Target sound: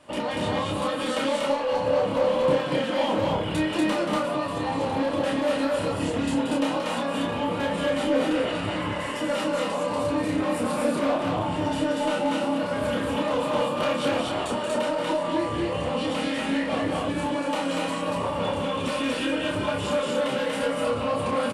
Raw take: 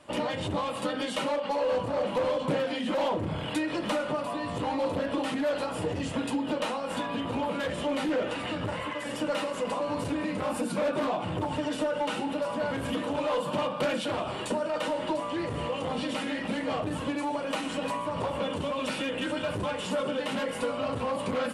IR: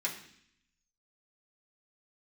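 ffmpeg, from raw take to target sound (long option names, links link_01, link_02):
-filter_complex "[0:a]asplit=2[link_01][link_02];[link_02]adelay=29,volume=-4dB[link_03];[link_01][link_03]amix=inputs=2:normalize=0,asplit=2[link_04][link_05];[link_05]aecho=0:1:180.8|239.1:0.447|0.891[link_06];[link_04][link_06]amix=inputs=2:normalize=0"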